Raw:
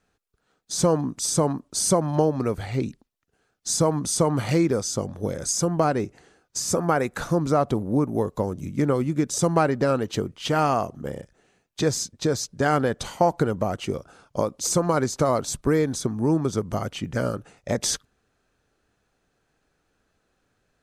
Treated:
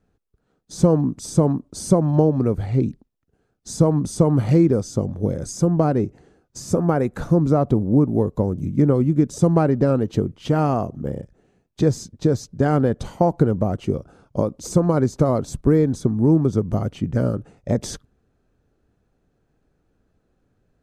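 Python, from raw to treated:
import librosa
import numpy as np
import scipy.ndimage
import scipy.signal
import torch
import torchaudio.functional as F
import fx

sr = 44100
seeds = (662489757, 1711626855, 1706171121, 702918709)

y = fx.tilt_shelf(x, sr, db=8.5, hz=690.0)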